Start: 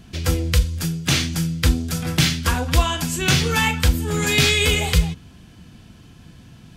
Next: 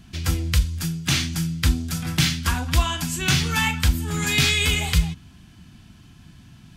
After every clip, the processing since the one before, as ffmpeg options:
ffmpeg -i in.wav -af "equalizer=frequency=490:width=2.1:gain=-11.5,volume=-2dB" out.wav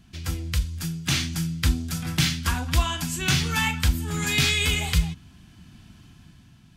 ffmpeg -i in.wav -af "dynaudnorm=framelen=140:gausssize=11:maxgain=7dB,volume=-6.5dB" out.wav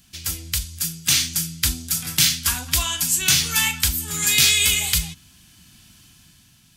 ffmpeg -i in.wav -af "crystalizer=i=7.5:c=0,volume=-6dB" out.wav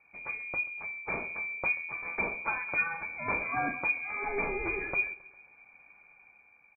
ffmpeg -i in.wav -af "aecho=1:1:134|268|402|536:0.0794|0.0445|0.0249|0.0139,lowpass=frequency=2100:width_type=q:width=0.5098,lowpass=frequency=2100:width_type=q:width=0.6013,lowpass=frequency=2100:width_type=q:width=0.9,lowpass=frequency=2100:width_type=q:width=2.563,afreqshift=-2500,volume=-3.5dB" out.wav

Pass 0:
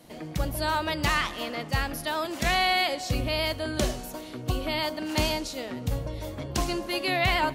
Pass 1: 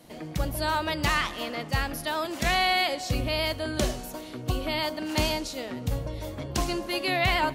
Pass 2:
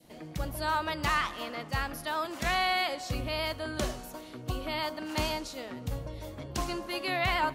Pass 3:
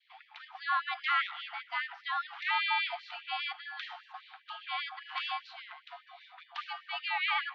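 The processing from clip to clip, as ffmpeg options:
ffmpeg -i in.wav -af anull out.wav
ffmpeg -i in.wav -af "adynamicequalizer=threshold=0.01:dfrequency=1200:dqfactor=1.4:tfrequency=1200:tqfactor=1.4:attack=5:release=100:ratio=0.375:range=3:mode=boostabove:tftype=bell,volume=-6dB" out.wav
ffmpeg -i in.wav -af "highpass=frequency=230:width_type=q:width=0.5412,highpass=frequency=230:width_type=q:width=1.307,lowpass=frequency=3600:width_type=q:width=0.5176,lowpass=frequency=3600:width_type=q:width=0.7071,lowpass=frequency=3600:width_type=q:width=1.932,afreqshift=150,afftfilt=real='re*gte(b*sr/1024,650*pow(1800/650,0.5+0.5*sin(2*PI*5*pts/sr)))':imag='im*gte(b*sr/1024,650*pow(1800/650,0.5+0.5*sin(2*PI*5*pts/sr)))':win_size=1024:overlap=0.75" out.wav

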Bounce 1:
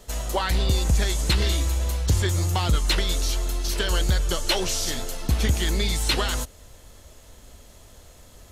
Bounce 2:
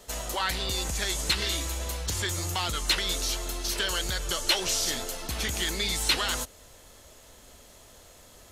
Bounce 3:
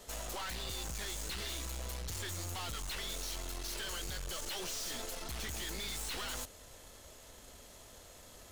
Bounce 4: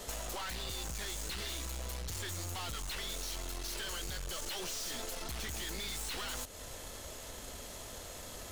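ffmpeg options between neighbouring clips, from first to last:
ffmpeg -i in.wav -filter_complex "[0:a]lowshelf=frequency=180:gain=-10,acrossover=split=1100[link_01][link_02];[link_01]alimiter=level_in=3.5dB:limit=-24dB:level=0:latency=1,volume=-3.5dB[link_03];[link_03][link_02]amix=inputs=2:normalize=0" out.wav
ffmpeg -i in.wav -af "aeval=exprs='(tanh(79.4*val(0)+0.4)-tanh(0.4))/79.4':channel_layout=same,volume=-1dB" out.wav
ffmpeg -i in.wav -af "acompressor=threshold=-47dB:ratio=5,volume=8.5dB" out.wav

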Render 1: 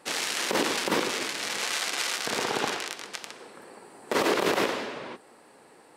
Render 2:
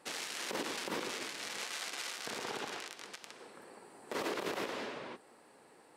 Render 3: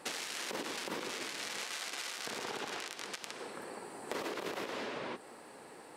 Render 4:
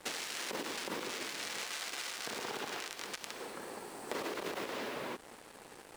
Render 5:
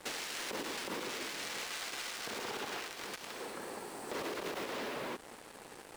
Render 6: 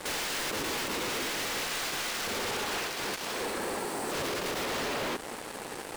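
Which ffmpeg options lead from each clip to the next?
ffmpeg -i in.wav -af "alimiter=limit=-20dB:level=0:latency=1:release=178,volume=-6.5dB" out.wav
ffmpeg -i in.wav -af "acompressor=threshold=-45dB:ratio=6,volume=8.5dB" out.wav
ffmpeg -i in.wav -af "acrusher=bits=7:mix=0:aa=0.5" out.wav
ffmpeg -i in.wav -af "asoftclip=type=tanh:threshold=-34dB,volume=2dB" out.wav
ffmpeg -i in.wav -af "aeval=exprs='0.0251*sin(PI/2*2.24*val(0)/0.0251)':channel_layout=same,volume=2.5dB" out.wav

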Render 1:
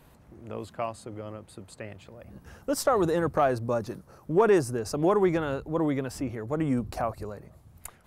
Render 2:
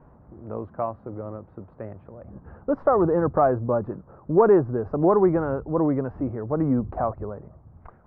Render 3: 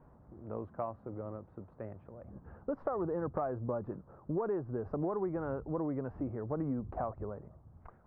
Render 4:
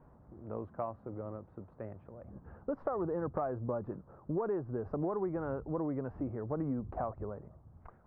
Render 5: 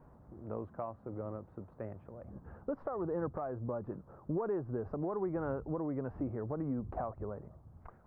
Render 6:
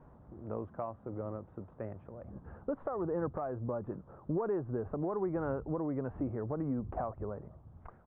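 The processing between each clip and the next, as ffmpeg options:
ffmpeg -i in.wav -af "lowpass=frequency=1300:width=0.5412,lowpass=frequency=1300:width=1.3066,volume=4.5dB" out.wav
ffmpeg -i in.wav -af "acompressor=threshold=-24dB:ratio=6,volume=-7.5dB" out.wav
ffmpeg -i in.wav -af anull out.wav
ffmpeg -i in.wav -af "alimiter=level_in=3dB:limit=-24dB:level=0:latency=1:release=407,volume=-3dB,volume=1dB" out.wav
ffmpeg -i in.wav -af "aresample=8000,aresample=44100,volume=1.5dB" out.wav

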